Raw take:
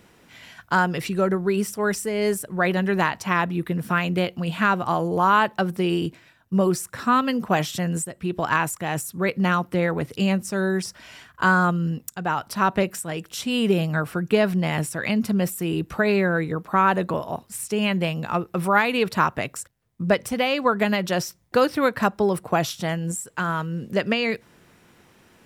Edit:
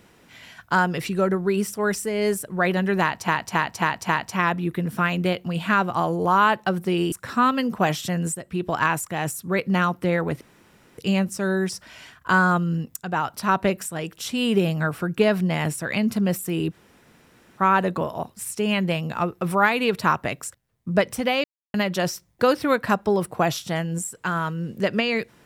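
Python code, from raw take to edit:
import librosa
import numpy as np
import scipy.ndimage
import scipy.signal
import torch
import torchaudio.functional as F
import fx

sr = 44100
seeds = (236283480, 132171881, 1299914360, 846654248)

y = fx.edit(x, sr, fx.repeat(start_s=3.01, length_s=0.27, count=5),
    fx.cut(start_s=6.04, length_s=0.78),
    fx.insert_room_tone(at_s=10.11, length_s=0.57),
    fx.room_tone_fill(start_s=15.85, length_s=0.88, crossfade_s=0.06),
    fx.silence(start_s=20.57, length_s=0.3), tone=tone)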